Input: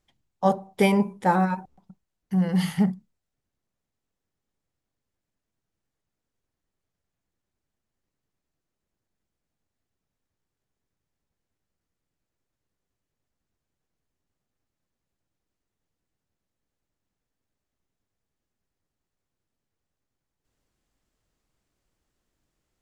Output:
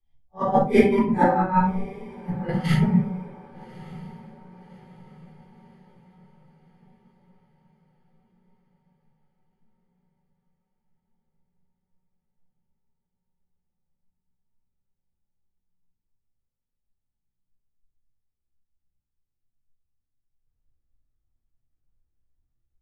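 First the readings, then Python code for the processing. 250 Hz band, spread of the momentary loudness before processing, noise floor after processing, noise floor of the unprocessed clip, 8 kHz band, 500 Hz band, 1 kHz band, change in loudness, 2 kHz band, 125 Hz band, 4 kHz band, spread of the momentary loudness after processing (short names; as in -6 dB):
+2.0 dB, 6 LU, -82 dBFS, -85 dBFS, n/a, +4.5 dB, +3.5 dB, +2.0 dB, +1.5 dB, +3.5 dB, -2.0 dB, 22 LU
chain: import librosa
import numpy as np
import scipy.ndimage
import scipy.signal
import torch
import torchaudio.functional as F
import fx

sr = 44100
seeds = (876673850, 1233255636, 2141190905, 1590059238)

y = fx.phase_scramble(x, sr, seeds[0], window_ms=200)
y = fx.lowpass(y, sr, hz=1100.0, slope=6)
y = fx.noise_reduce_blind(y, sr, reduce_db=12)
y = fx.peak_eq(y, sr, hz=650.0, db=-2.5, octaves=1.8)
y = fx.over_compress(y, sr, threshold_db=-30.0, ratio=-0.5)
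y = fx.echo_diffused(y, sr, ms=1179, feedback_pct=57, wet_db=-15.0)
y = fx.room_shoebox(y, sr, seeds[1], volume_m3=260.0, walls='furnished', distance_m=3.8)
y = fx.band_widen(y, sr, depth_pct=40)
y = y * librosa.db_to_amplitude(2.5)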